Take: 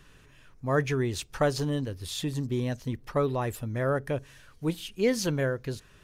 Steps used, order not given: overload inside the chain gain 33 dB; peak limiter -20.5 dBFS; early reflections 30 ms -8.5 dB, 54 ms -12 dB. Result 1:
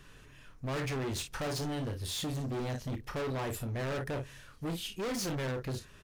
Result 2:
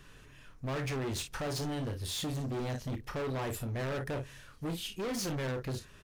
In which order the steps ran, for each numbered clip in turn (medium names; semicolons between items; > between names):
early reflections > overload inside the chain > peak limiter; peak limiter > early reflections > overload inside the chain